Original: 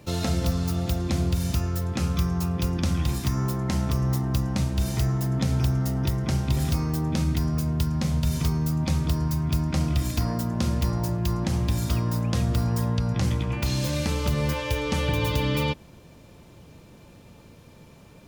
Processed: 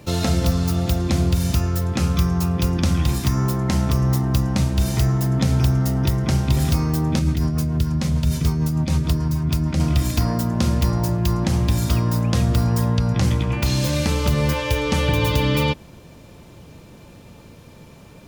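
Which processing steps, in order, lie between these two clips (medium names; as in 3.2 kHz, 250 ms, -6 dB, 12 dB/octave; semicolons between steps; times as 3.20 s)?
7.19–9.80 s: rotary cabinet horn 6.7 Hz; trim +5.5 dB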